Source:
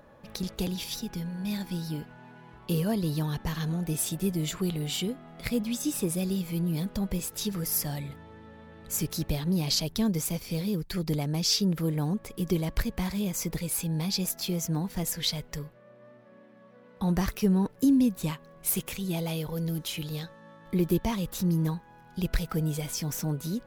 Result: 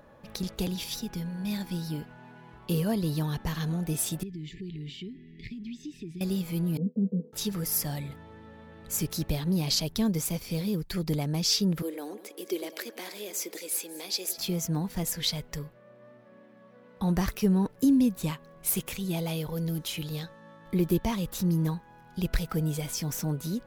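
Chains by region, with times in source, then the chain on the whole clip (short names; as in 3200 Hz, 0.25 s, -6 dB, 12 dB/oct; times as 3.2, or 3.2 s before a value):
4.23–6.21 compressor, threshold -35 dBFS + brick-wall FIR band-stop 440–1700 Hz + air absorption 190 m
6.77–7.33 expander -34 dBFS + Chebyshev band-pass 160–480 Hz, order 3 + comb 4.3 ms, depth 85%
11.82–14.38 steep high-pass 310 Hz + bell 1000 Hz -7.5 dB 0.96 oct + echo with dull and thin repeats by turns 0.1 s, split 1400 Hz, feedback 66%, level -12.5 dB
whole clip: dry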